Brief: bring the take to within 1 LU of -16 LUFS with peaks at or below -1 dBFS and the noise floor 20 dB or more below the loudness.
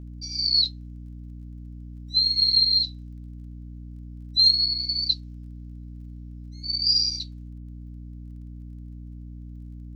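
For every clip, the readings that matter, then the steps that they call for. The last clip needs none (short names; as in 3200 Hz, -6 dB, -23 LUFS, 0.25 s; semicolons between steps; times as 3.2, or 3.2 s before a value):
ticks 22/s; hum 60 Hz; harmonics up to 300 Hz; hum level -37 dBFS; loudness -20.5 LUFS; peak -9.0 dBFS; loudness target -16.0 LUFS
-> de-click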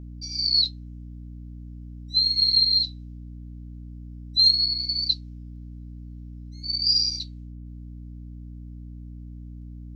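ticks 0/s; hum 60 Hz; harmonics up to 300 Hz; hum level -37 dBFS
-> notches 60/120/180/240/300 Hz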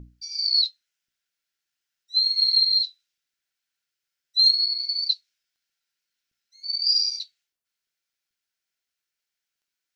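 hum none; loudness -20.5 LUFS; peak -9.5 dBFS; loudness target -16.0 LUFS
-> gain +4.5 dB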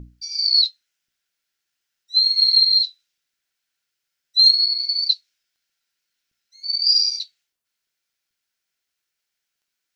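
loudness -16.0 LUFS; peak -5.0 dBFS; noise floor -81 dBFS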